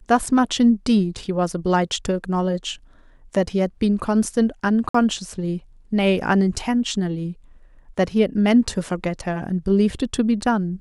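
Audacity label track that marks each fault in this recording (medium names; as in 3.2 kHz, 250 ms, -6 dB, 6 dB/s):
4.890000	4.940000	dropout 54 ms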